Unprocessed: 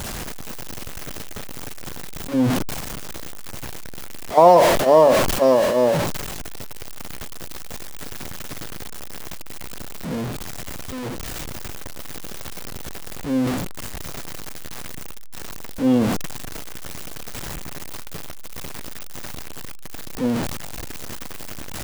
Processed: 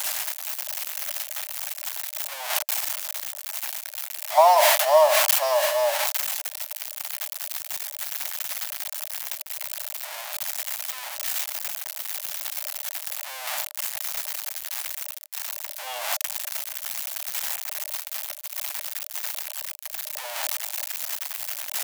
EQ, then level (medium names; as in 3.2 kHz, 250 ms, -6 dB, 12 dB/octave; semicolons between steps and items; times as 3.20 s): rippled Chebyshev high-pass 590 Hz, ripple 3 dB; tilt EQ +2.5 dB/octave; peaking EQ 13 kHz +5 dB 0.36 oct; 0.0 dB